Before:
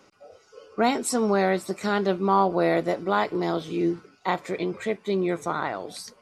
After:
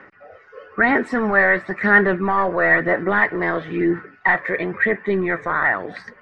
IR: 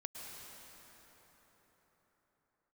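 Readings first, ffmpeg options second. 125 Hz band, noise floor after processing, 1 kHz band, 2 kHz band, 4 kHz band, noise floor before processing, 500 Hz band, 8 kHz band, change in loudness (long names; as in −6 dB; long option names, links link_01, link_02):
+3.0 dB, −50 dBFS, +3.5 dB, +17.0 dB, can't be measured, −59 dBFS, +3.5 dB, below −20 dB, +7.0 dB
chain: -af "apsyclip=20dB,aphaser=in_gain=1:out_gain=1:delay=1.9:decay=0.36:speed=1:type=sinusoidal,lowpass=frequency=1800:width_type=q:width=11,volume=-15.5dB"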